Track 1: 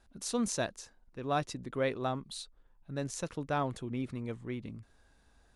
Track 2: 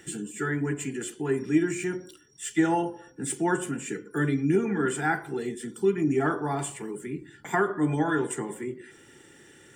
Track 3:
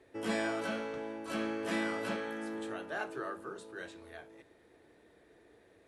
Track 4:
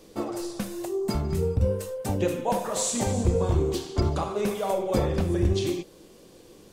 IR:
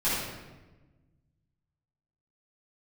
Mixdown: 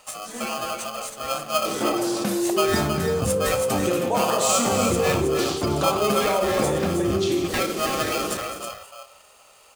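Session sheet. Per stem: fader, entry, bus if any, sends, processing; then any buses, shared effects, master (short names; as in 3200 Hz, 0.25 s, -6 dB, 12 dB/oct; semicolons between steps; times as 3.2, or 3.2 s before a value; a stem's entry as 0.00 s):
-8.5 dB, 0.00 s, send -16 dB, no echo send, dry
-1.5 dB, 0.00 s, no send, echo send -7 dB, high shelf 6400 Hz +6 dB; polarity switched at an audio rate 940 Hz
-14.5 dB, 0.00 s, send -7 dB, no echo send, comb 4 ms
+0.5 dB, 1.65 s, no send, echo send -11 dB, HPF 160 Hz 12 dB/oct; fast leveller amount 70%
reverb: on, RT60 1.2 s, pre-delay 5 ms
echo: echo 0.318 s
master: dry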